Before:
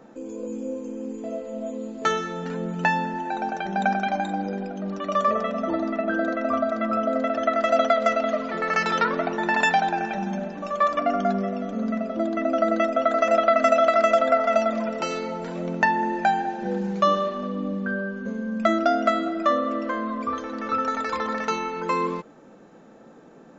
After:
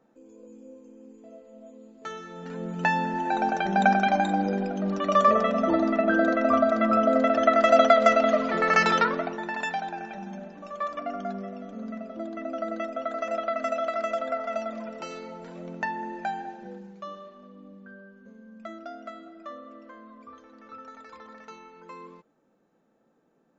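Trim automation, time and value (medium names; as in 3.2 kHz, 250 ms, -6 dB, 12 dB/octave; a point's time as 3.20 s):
2.01 s -16 dB
2.61 s -5 dB
3.34 s +2.5 dB
8.87 s +2.5 dB
9.52 s -10 dB
16.50 s -10 dB
16.97 s -19.5 dB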